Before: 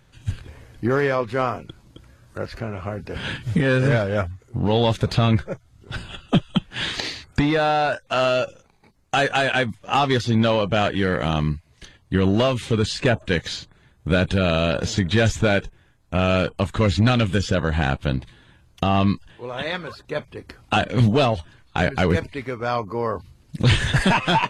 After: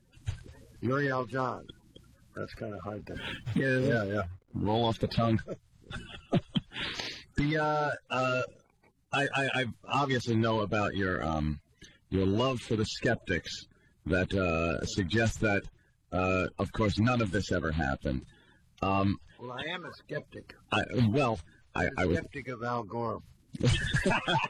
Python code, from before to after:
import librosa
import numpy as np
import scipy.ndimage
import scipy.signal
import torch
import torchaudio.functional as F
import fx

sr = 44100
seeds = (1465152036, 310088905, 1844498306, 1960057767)

y = fx.spec_quant(x, sr, step_db=30)
y = fx.backlash(y, sr, play_db=-45.5, at=(2.74, 4.77))
y = y * 10.0 ** (-8.5 / 20.0)